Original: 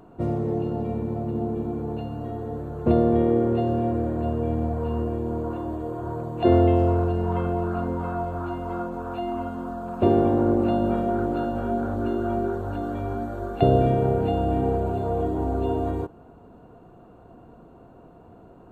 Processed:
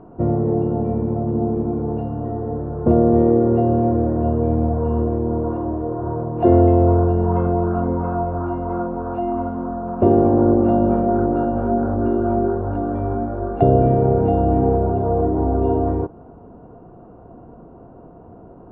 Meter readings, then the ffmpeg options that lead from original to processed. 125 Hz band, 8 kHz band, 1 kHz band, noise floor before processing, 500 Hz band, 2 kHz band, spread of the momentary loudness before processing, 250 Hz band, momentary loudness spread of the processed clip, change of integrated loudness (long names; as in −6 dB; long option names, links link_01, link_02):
+6.0 dB, can't be measured, +5.5 dB, −50 dBFS, +5.5 dB, −0.5 dB, 11 LU, +6.0 dB, 10 LU, +6.0 dB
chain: -filter_complex "[0:a]lowpass=1100,asplit=2[link_01][link_02];[link_02]alimiter=limit=-13.5dB:level=0:latency=1:release=260,volume=-0.5dB[link_03];[link_01][link_03]amix=inputs=2:normalize=0,volume=1dB"